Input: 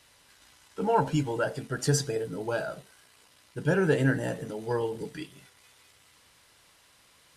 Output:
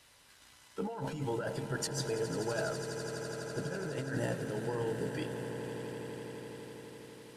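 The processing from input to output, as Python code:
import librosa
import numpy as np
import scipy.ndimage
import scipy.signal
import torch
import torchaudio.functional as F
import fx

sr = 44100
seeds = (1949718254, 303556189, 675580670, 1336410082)

p1 = fx.over_compress(x, sr, threshold_db=-31.0, ratio=-1.0)
p2 = p1 + fx.echo_swell(p1, sr, ms=83, loudest=8, wet_db=-14.0, dry=0)
y = F.gain(torch.from_numpy(p2), -5.5).numpy()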